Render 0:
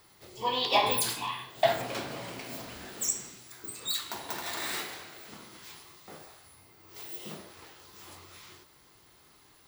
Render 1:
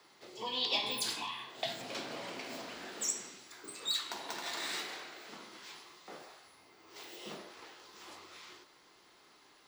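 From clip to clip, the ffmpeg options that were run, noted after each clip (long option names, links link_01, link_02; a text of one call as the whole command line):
ffmpeg -i in.wav -filter_complex "[0:a]asubboost=boost=3.5:cutoff=64,acrossover=split=240|3000[link_01][link_02][link_03];[link_02]acompressor=threshold=-40dB:ratio=6[link_04];[link_01][link_04][link_03]amix=inputs=3:normalize=0,acrossover=split=180 7400:gain=0.0631 1 0.158[link_05][link_06][link_07];[link_05][link_06][link_07]amix=inputs=3:normalize=0" out.wav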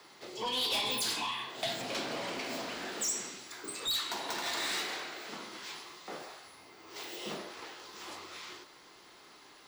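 ffmpeg -i in.wav -af "asoftclip=type=tanh:threshold=-34.5dB,volume=6.5dB" out.wav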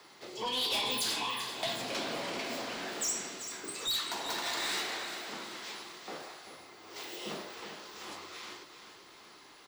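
ffmpeg -i in.wav -af "aecho=1:1:388|776|1164|1552|1940:0.316|0.155|0.0759|0.0372|0.0182" out.wav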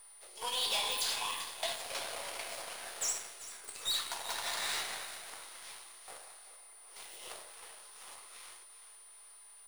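ffmpeg -i in.wav -af "highpass=frequency=510:width=0.5412,highpass=frequency=510:width=1.3066,aeval=exprs='val(0)+0.00794*sin(2*PI*9400*n/s)':channel_layout=same,aeval=exprs='0.0668*(cos(1*acos(clip(val(0)/0.0668,-1,1)))-cos(1*PI/2))+0.00668*(cos(3*acos(clip(val(0)/0.0668,-1,1)))-cos(3*PI/2))+0.00473*(cos(7*acos(clip(val(0)/0.0668,-1,1)))-cos(7*PI/2))+0.0015*(cos(8*acos(clip(val(0)/0.0668,-1,1)))-cos(8*PI/2))':channel_layout=same" out.wav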